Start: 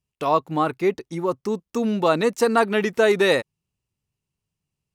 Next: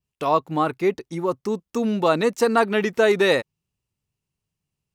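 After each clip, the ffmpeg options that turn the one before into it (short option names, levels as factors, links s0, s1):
-af "adynamicequalizer=threshold=0.00282:dfrequency=9900:dqfactor=1.6:tfrequency=9900:tqfactor=1.6:attack=5:release=100:ratio=0.375:range=2:mode=cutabove:tftype=bell"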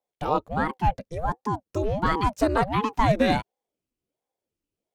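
-af "equalizer=f=330:w=0.92:g=6,aeval=exprs='val(0)*sin(2*PI*400*n/s+400*0.65/1.4*sin(2*PI*1.4*n/s))':c=same,volume=0.631"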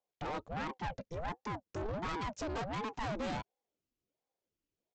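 -af "alimiter=limit=0.211:level=0:latency=1:release=40,aresample=16000,asoftclip=type=tanh:threshold=0.0316,aresample=44100,volume=0.596"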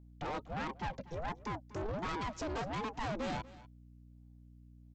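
-af "aeval=exprs='val(0)+0.00178*(sin(2*PI*60*n/s)+sin(2*PI*2*60*n/s)/2+sin(2*PI*3*60*n/s)/3+sin(2*PI*4*60*n/s)/4+sin(2*PI*5*60*n/s)/5)':c=same,aecho=1:1:242:0.119"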